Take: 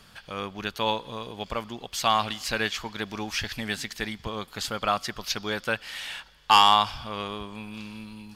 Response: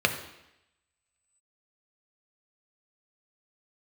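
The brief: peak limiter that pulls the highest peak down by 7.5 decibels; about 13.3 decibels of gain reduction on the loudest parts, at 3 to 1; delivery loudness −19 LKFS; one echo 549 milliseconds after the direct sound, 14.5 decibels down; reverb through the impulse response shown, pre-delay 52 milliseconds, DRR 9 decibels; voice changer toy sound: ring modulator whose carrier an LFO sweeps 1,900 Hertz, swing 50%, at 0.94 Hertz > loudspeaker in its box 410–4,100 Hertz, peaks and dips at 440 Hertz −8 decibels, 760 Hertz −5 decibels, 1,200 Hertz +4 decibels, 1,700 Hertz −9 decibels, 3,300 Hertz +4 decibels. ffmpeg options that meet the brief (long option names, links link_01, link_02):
-filter_complex "[0:a]acompressor=threshold=-30dB:ratio=3,alimiter=limit=-22dB:level=0:latency=1,aecho=1:1:549:0.188,asplit=2[link_01][link_02];[1:a]atrim=start_sample=2205,adelay=52[link_03];[link_02][link_03]afir=irnorm=-1:irlink=0,volume=-23dB[link_04];[link_01][link_04]amix=inputs=2:normalize=0,aeval=exprs='val(0)*sin(2*PI*1900*n/s+1900*0.5/0.94*sin(2*PI*0.94*n/s))':channel_layout=same,highpass=410,equalizer=frequency=440:width_type=q:width=4:gain=-8,equalizer=frequency=760:width_type=q:width=4:gain=-5,equalizer=frequency=1200:width_type=q:width=4:gain=4,equalizer=frequency=1700:width_type=q:width=4:gain=-9,equalizer=frequency=3300:width_type=q:width=4:gain=4,lowpass=frequency=4100:width=0.5412,lowpass=frequency=4100:width=1.3066,volume=19.5dB"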